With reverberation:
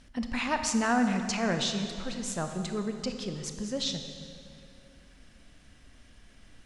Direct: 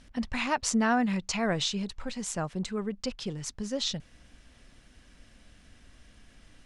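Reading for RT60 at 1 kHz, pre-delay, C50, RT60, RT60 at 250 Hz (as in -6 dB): 2.5 s, 24 ms, 7.0 dB, 2.6 s, 2.8 s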